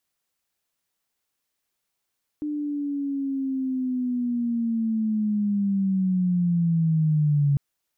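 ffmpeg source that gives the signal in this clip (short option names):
-f lavfi -i "aevalsrc='pow(10,(-25.5+8.5*t/5.15)/20)*sin(2*PI*(300*t-160*t*t/(2*5.15)))':d=5.15:s=44100"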